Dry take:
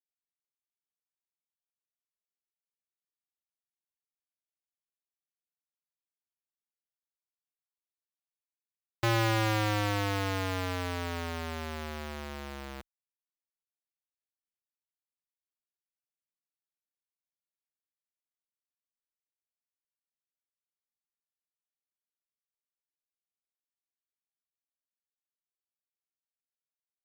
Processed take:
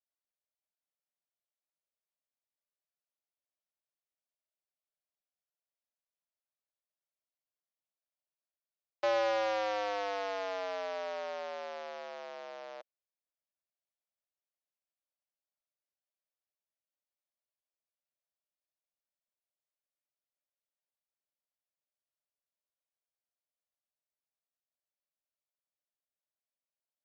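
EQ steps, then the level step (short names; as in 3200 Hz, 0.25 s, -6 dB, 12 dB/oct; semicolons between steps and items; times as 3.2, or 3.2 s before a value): resonant high-pass 590 Hz, resonance Q 4.9; steep low-pass 6200 Hz 48 dB/oct; -7.0 dB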